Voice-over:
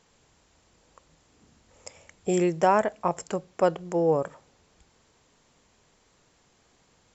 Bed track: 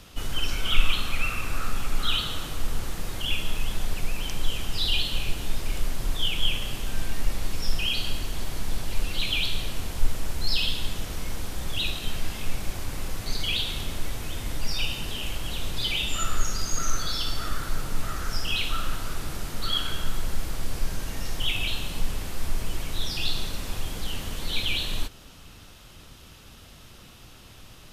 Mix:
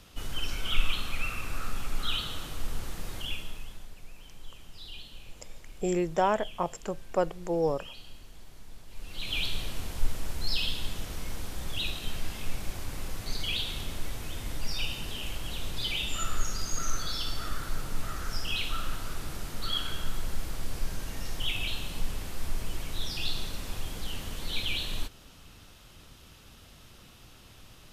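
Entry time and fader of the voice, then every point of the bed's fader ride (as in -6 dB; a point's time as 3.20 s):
3.55 s, -4.5 dB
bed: 3.18 s -5.5 dB
3.94 s -19.5 dB
8.87 s -19.5 dB
9.38 s -4.5 dB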